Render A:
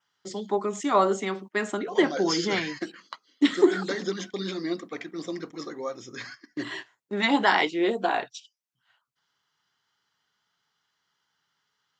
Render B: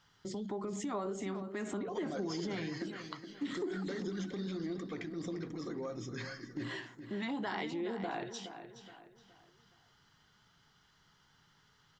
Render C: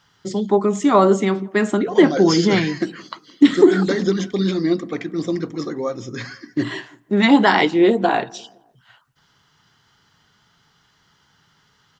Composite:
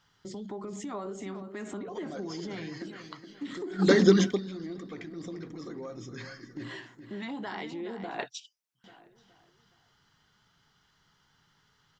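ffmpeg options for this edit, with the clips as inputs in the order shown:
-filter_complex "[1:a]asplit=3[s0][s1][s2];[s0]atrim=end=3.88[s3];[2:a]atrim=start=3.78:end=4.4[s4];[s1]atrim=start=4.3:end=8.192[s5];[0:a]atrim=start=8.188:end=8.842[s6];[s2]atrim=start=8.838[s7];[s3][s4]acrossfade=d=0.1:c1=tri:c2=tri[s8];[s8][s5]acrossfade=d=0.1:c1=tri:c2=tri[s9];[s9][s6]acrossfade=d=0.004:c1=hsin:c2=hsin[s10];[s10][s7]acrossfade=d=0.004:c1=hsin:c2=hsin"

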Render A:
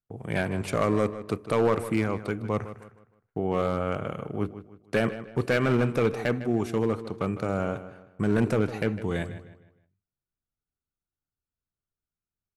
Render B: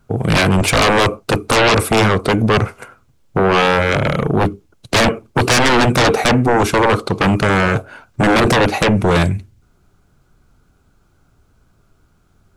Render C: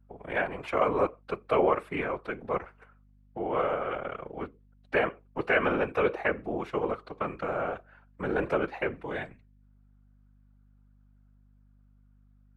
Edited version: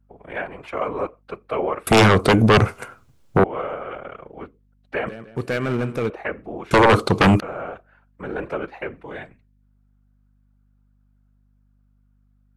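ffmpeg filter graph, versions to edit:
-filter_complex "[1:a]asplit=2[s0][s1];[2:a]asplit=4[s2][s3][s4][s5];[s2]atrim=end=1.872[s6];[s0]atrim=start=1.868:end=3.442[s7];[s3]atrim=start=3.438:end=5.072[s8];[0:a]atrim=start=5.068:end=6.102[s9];[s4]atrim=start=6.098:end=6.712[s10];[s1]atrim=start=6.708:end=7.402[s11];[s5]atrim=start=7.398[s12];[s6][s7]acrossfade=d=0.004:c1=hsin:c2=hsin[s13];[s13][s8]acrossfade=d=0.004:c1=hsin:c2=hsin[s14];[s14][s9]acrossfade=d=0.004:c1=hsin:c2=hsin[s15];[s15][s10]acrossfade=d=0.004:c1=hsin:c2=hsin[s16];[s16][s11]acrossfade=d=0.004:c1=hsin:c2=hsin[s17];[s17][s12]acrossfade=d=0.004:c1=hsin:c2=hsin"

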